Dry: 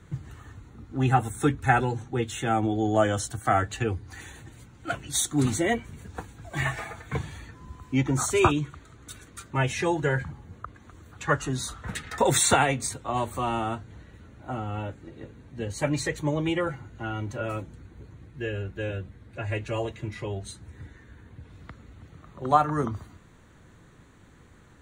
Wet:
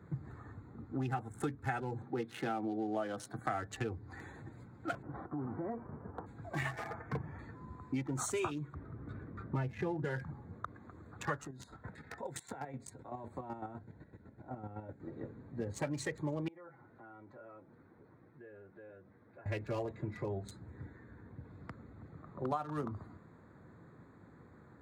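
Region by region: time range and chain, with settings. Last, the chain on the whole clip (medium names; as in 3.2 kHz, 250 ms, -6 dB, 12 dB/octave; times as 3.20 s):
2.02–3.39 s: high-pass 140 Hz 24 dB/octave + peaking EQ 7.3 kHz -14.5 dB 0.3 oct
5.01–6.26 s: formants flattened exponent 0.6 + low-pass 1.3 kHz 24 dB/octave + compression 5:1, threshold -34 dBFS
6.94–7.39 s: boxcar filter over 11 samples + tape noise reduction on one side only encoder only
8.74–10.05 s: low-pass 2.3 kHz + bass shelf 320 Hz +10 dB
11.47–15.00 s: band-stop 1.2 kHz, Q 5.1 + compression 4:1, threshold -36 dBFS + square tremolo 7.9 Hz, depth 60%, duty 30%
16.48–19.46 s: high-pass 530 Hz 6 dB/octave + distance through air 180 m + compression 3:1, threshold -53 dBFS
whole clip: local Wiener filter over 15 samples; high-pass 110 Hz 12 dB/octave; compression 6:1, threshold -33 dBFS; trim -1 dB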